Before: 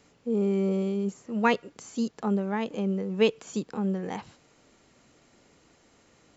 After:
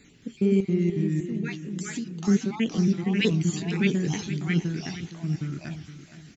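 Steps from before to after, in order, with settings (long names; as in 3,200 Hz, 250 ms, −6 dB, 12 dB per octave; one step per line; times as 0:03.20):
time-frequency cells dropped at random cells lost 33%
flat-topped bell 790 Hz −14.5 dB
in parallel at +2.5 dB: brickwall limiter −23.5 dBFS, peak gain reduction 7.5 dB
0:00.60–0:02.28: on the sum: downward compressor 5 to 1, threshold −33 dBFS, peak gain reduction 13.5 dB
flanger 1.5 Hz, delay 3.7 ms, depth 7.6 ms, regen −63%
delay with pitch and tempo change per echo 221 ms, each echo −2 semitones, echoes 2
on a send: repeating echo 467 ms, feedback 37%, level −13 dB
on the sum: level +5 dB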